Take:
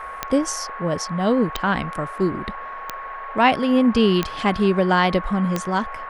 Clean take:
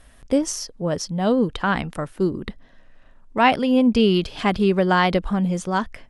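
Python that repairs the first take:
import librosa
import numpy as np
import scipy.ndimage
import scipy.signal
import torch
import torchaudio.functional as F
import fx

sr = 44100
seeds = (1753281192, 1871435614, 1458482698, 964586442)

y = fx.fix_declick_ar(x, sr, threshold=10.0)
y = fx.notch(y, sr, hz=1100.0, q=30.0)
y = fx.noise_reduce(y, sr, print_start_s=2.59, print_end_s=3.09, reduce_db=14.0)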